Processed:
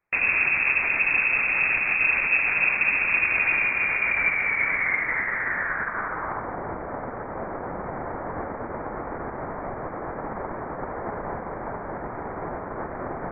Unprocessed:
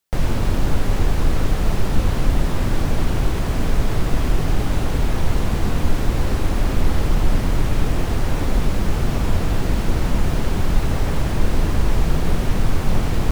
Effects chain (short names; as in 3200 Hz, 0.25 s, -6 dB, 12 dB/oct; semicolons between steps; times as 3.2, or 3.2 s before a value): low shelf 150 Hz -9.5 dB; limiter -19.5 dBFS, peak gain reduction 9 dB; high-pass sweep 66 Hz -> 2000 Hz, 2.85–6.58; inverted band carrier 2600 Hz; gain +5 dB